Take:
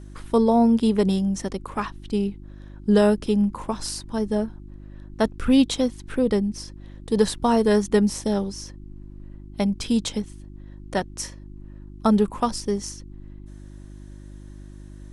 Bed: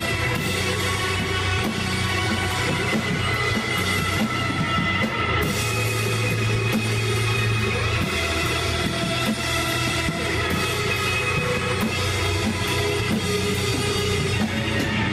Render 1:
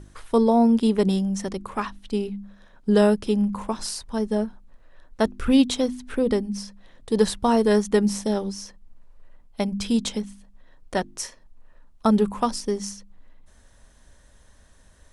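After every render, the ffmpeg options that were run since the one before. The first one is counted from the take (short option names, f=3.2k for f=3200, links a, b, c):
-af "bandreject=f=50:t=h:w=4,bandreject=f=100:t=h:w=4,bandreject=f=150:t=h:w=4,bandreject=f=200:t=h:w=4,bandreject=f=250:t=h:w=4,bandreject=f=300:t=h:w=4,bandreject=f=350:t=h:w=4"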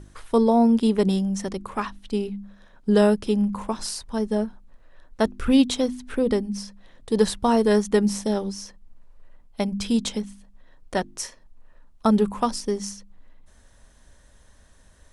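-af anull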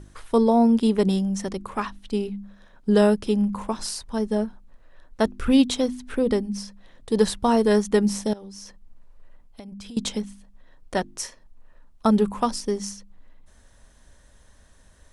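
-filter_complex "[0:a]asettb=1/sr,asplit=3[a][b][c];[a]atrim=end=8.334[d];[b]atrim=start=8.33:end=9.97,asetpts=PTS-STARTPTS,afade=t=in:d=0.004:c=qsin,afade=t=out:st=1.636:d=0.004:c=qsin,acompressor=threshold=-36dB:ratio=16:attack=3.2:release=140:knee=1:detection=peak[e];[c]atrim=start=9.966[f];[d][e]acrossfade=d=0.004:c1=hsin:c2=qsin[g];[g][f]acrossfade=d=0.004:c1=qsin:c2=hsin"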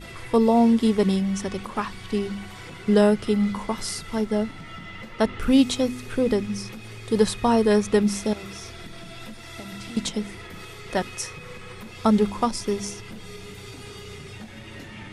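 -filter_complex "[1:a]volume=-17.5dB[a];[0:a][a]amix=inputs=2:normalize=0"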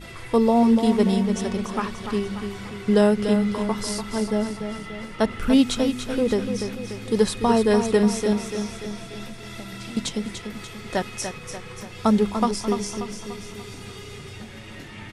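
-af "aecho=1:1:292|584|876|1168|1460|1752:0.398|0.207|0.108|0.056|0.0291|0.0151"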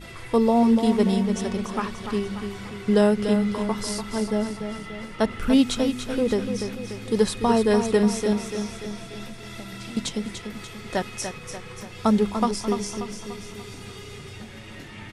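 -af "volume=-1dB"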